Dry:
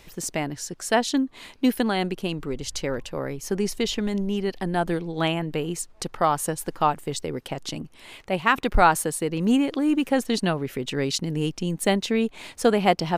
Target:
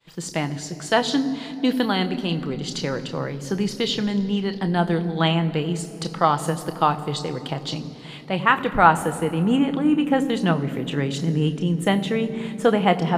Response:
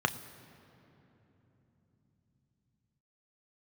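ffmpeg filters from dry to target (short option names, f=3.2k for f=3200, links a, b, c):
-filter_complex "[0:a]agate=range=-33dB:threshold=-43dB:ratio=3:detection=peak,asetnsamples=n=441:p=0,asendcmd='8.39 equalizer g -3.5',equalizer=f=4.6k:t=o:w=0.64:g=11.5[a];[1:a]atrim=start_sample=2205,asetrate=48510,aresample=44100[b];[a][b]afir=irnorm=-1:irlink=0,volume=-6.5dB"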